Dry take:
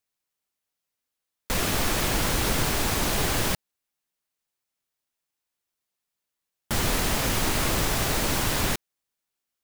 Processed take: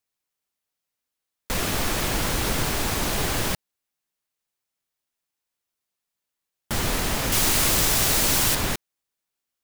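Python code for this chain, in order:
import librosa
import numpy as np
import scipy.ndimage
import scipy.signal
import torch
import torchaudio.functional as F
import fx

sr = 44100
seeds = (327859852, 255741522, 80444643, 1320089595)

y = fx.high_shelf(x, sr, hz=3200.0, db=9.5, at=(7.32, 8.55))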